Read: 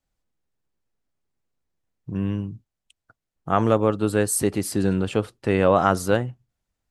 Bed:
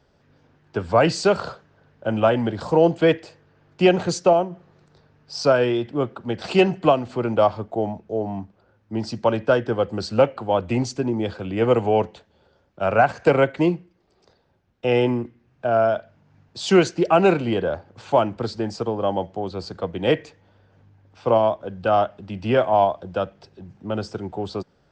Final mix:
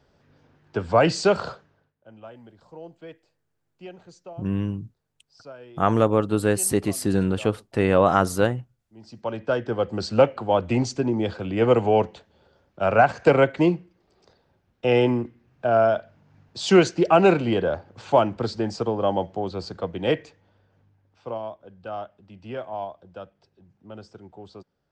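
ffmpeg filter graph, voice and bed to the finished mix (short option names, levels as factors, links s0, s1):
-filter_complex "[0:a]adelay=2300,volume=1[s0];[1:a]volume=15.8,afade=t=out:st=1.53:d=0.4:silence=0.0630957,afade=t=in:st=8.95:d=1.14:silence=0.0562341,afade=t=out:st=19.38:d=1.99:silence=0.188365[s1];[s0][s1]amix=inputs=2:normalize=0"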